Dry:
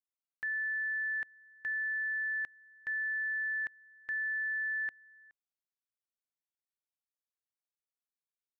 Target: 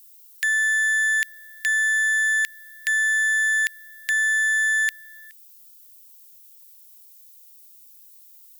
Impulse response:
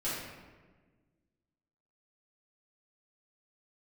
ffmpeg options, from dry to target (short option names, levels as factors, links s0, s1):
-af "aemphasis=mode=production:type=50fm,aeval=exprs='0.0335*(cos(1*acos(clip(val(0)/0.0335,-1,1)))-cos(1*PI/2))+0.000944*(cos(6*acos(clip(val(0)/0.0335,-1,1)))-cos(6*PI/2))':c=same,aexciter=amount=8.9:drive=8.5:freq=2100,volume=1.5"